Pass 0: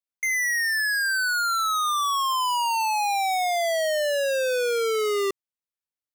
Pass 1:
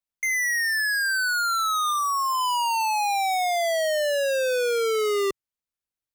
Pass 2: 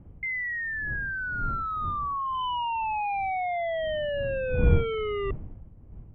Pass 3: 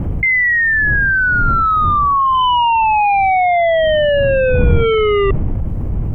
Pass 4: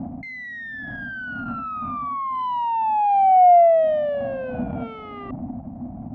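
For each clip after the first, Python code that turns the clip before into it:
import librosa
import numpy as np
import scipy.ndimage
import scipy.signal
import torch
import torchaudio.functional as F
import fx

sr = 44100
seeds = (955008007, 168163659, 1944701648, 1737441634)

y1 = fx.spec_repair(x, sr, seeds[0], start_s=1.93, length_s=0.47, low_hz=1600.0, high_hz=3900.0, source='both')
y1 = fx.low_shelf(y1, sr, hz=120.0, db=10.0)
y2 = fx.dmg_wind(y1, sr, seeds[1], corner_hz=95.0, level_db=-25.0)
y2 = scipy.signal.sosfilt(scipy.signal.cheby1(6, 3, 3200.0, 'lowpass', fs=sr, output='sos'), y2)
y2 = y2 * 10.0 ** (-4.5 / 20.0)
y3 = fx.env_flatten(y2, sr, amount_pct=70)
y3 = y3 * 10.0 ** (7.0 / 20.0)
y4 = fx.cheby_harmonics(y3, sr, harmonics=(5, 6), levels_db=(-22, -22), full_scale_db=-1.0)
y4 = fx.double_bandpass(y4, sr, hz=420.0, octaves=1.5)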